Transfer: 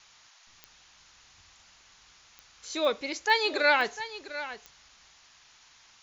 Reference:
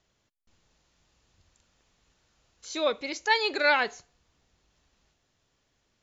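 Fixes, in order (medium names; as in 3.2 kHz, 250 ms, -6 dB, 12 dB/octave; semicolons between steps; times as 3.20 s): de-click; noise print and reduce 15 dB; inverse comb 700 ms -13.5 dB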